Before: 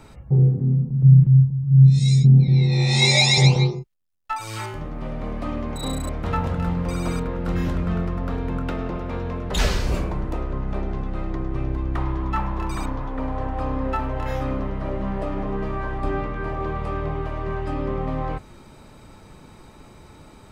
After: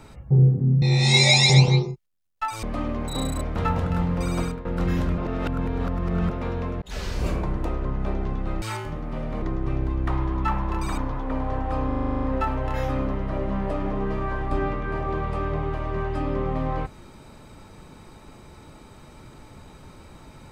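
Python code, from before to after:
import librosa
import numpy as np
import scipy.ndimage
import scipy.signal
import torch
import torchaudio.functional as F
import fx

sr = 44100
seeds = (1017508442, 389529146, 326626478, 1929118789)

y = fx.edit(x, sr, fx.cut(start_s=0.82, length_s=1.88),
    fx.move(start_s=4.51, length_s=0.8, to_s=11.3),
    fx.fade_out_to(start_s=7.07, length_s=0.26, floor_db=-13.5),
    fx.reverse_span(start_s=7.86, length_s=1.12),
    fx.fade_in_span(start_s=9.5, length_s=0.56),
    fx.stutter(start_s=13.75, slice_s=0.04, count=10), tone=tone)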